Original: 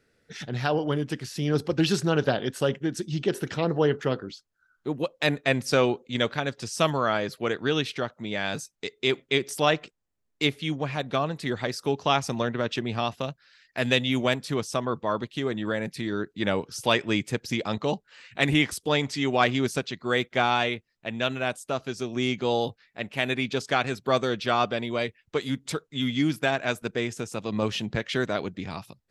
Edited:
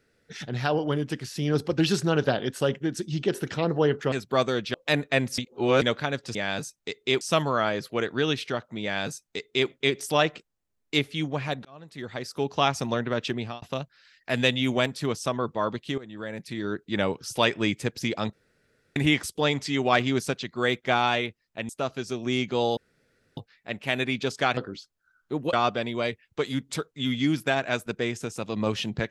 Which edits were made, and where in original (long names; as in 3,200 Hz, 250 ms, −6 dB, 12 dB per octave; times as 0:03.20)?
0:04.12–0:05.08: swap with 0:23.87–0:24.49
0:05.72–0:06.16: reverse
0:08.31–0:09.17: duplicate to 0:06.69
0:11.13–0:12.08: fade in
0:12.85–0:13.10: fade out
0:15.46–0:16.27: fade in, from −16.5 dB
0:17.81–0:18.44: fill with room tone
0:21.17–0:21.59: remove
0:22.67: splice in room tone 0.60 s